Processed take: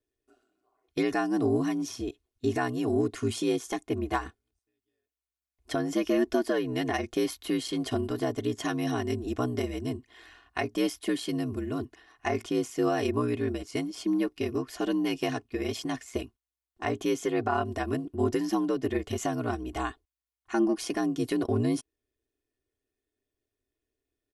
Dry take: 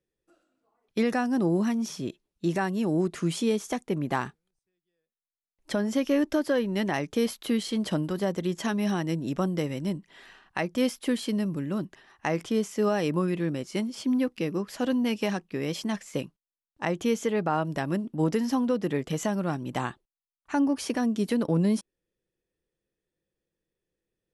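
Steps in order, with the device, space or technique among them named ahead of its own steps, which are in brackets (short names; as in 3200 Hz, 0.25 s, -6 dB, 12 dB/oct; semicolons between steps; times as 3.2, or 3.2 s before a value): ring-modulated robot voice (ring modulator 60 Hz; comb 2.8 ms, depth 73%)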